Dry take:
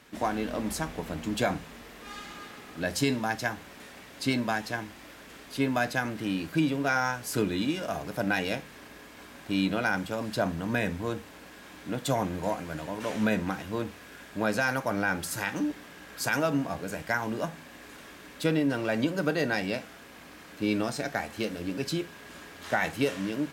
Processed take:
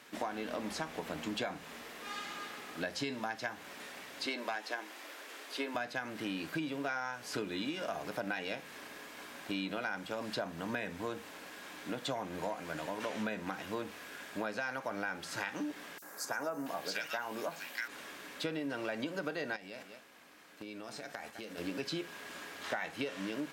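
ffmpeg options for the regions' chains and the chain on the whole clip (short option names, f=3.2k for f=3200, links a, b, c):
-filter_complex "[0:a]asettb=1/sr,asplit=3[a][b][c];[a]atrim=end=4.264[d];[b]atrim=start=4.26:end=5.75,asetpts=PTS-STARTPTS,afade=t=in:d=0.004:c=qsin,afade=t=out:st=1.486:d=0.004:c=qsin,highpass=f=300:w=0.5412,highpass=f=300:w=1.3066,aeval=exprs='clip(val(0),-1,0.0708)':c=same[e];[c]atrim=start=5.746[f];[d][e]acrossfade=d=0.004:c1=hsin:c2=qsin[g];[g][f]acrossfade=d=0.004:c1=qsin:c2=hsin,asettb=1/sr,asplit=3[h][i][j];[h]atrim=end=15.984[k];[i]atrim=start=15.98:end=17.88,asetpts=PTS-STARTPTS,afade=t=in:d=0.004:c=qsin,afade=t=out:st=1.896:d=0.004:c=qsin,aemphasis=mode=production:type=bsi,acrossover=split=1700|5600[l][m][n];[l]adelay=40[o];[m]adelay=680[p];[o][p][n]amix=inputs=3:normalize=0,atrim=end_sample=83790[q];[j]atrim=start=17.876[r];[k][q]acrossfade=d=0.004:c1=hsin:c2=qsin[s];[s][r]acrossfade=d=0.004:c1=qsin:c2=hsin,asettb=1/sr,asplit=3[t][u][v];[t]atrim=end=19.564[w];[u]atrim=start=19.56:end=21.58,asetpts=PTS-STARTPTS,afade=t=in:d=0.004:c=qsin,afade=t=out:st=2.016:d=0.004:c=qsin,agate=range=-10dB:threshold=-42dB:ratio=16:release=100:detection=peak,aecho=1:1:204:0.0891,atrim=end_sample=89082,acompressor=threshold=-38dB:ratio=16:attack=3.2:release=140:knee=1:detection=peak[x];[v]atrim=start=21.576[y];[w][x]acrossfade=d=0.004:c1=hsin:c2=qsin[z];[z][y]acrossfade=d=0.004:c1=qsin:c2=hsin,acrossover=split=5400[aa][ab];[ab]acompressor=threshold=-54dB:ratio=4:attack=1:release=60[ac];[aa][ac]amix=inputs=2:normalize=0,highpass=f=410:p=1,acompressor=threshold=-35dB:ratio=6,volume=1dB"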